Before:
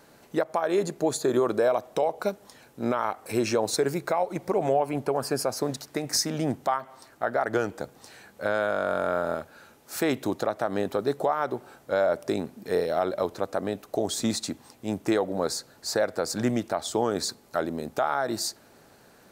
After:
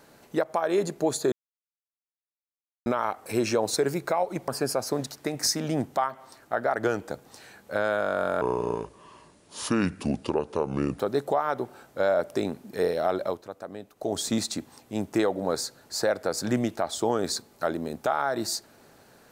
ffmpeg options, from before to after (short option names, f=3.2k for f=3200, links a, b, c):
-filter_complex "[0:a]asplit=8[a][b][c][d][e][f][g][h];[a]atrim=end=1.32,asetpts=PTS-STARTPTS,afade=t=out:st=1.316:d=0.004:c=hsin[i];[b]atrim=start=1.32:end=2.86,asetpts=PTS-STARTPTS,volume=0[j];[c]atrim=start=2.86:end=4.482,asetpts=PTS-STARTPTS,afade=t=in:d=0.004:c=hsin[k];[d]atrim=start=5.178:end=9.114[l];[e]atrim=start=9.11:end=10.92,asetpts=PTS-STARTPTS,asetrate=30870,aresample=44100[m];[f]atrim=start=10.916:end=13.35,asetpts=PTS-STARTPTS,afade=t=out:st=2.244:d=0.19:silence=0.316228[n];[g]atrim=start=13.35:end=13.88,asetpts=PTS-STARTPTS,volume=-10dB[o];[h]atrim=start=13.88,asetpts=PTS-STARTPTS,afade=t=in:d=0.19:silence=0.316228[p];[i][j][k]concat=n=3:v=0:a=1[q];[q][l]acrossfade=d=0.004:c1=hsin:c2=hsin[r];[r][m]acrossfade=d=0.004:c1=hsin:c2=hsin[s];[n][o][p]concat=n=3:v=0:a=1[t];[s][t]acrossfade=d=0.004:c1=hsin:c2=hsin"